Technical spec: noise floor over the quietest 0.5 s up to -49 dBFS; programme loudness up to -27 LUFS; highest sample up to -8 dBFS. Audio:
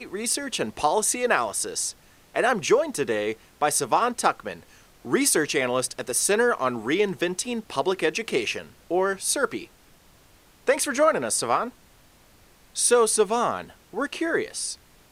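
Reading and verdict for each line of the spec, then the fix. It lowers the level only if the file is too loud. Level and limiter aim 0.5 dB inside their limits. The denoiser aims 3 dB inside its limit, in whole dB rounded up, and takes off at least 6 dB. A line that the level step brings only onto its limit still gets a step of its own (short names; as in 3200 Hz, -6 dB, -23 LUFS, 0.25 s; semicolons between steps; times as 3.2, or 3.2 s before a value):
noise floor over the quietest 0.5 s -55 dBFS: OK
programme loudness -24.0 LUFS: fail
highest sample -6.0 dBFS: fail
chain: gain -3.5 dB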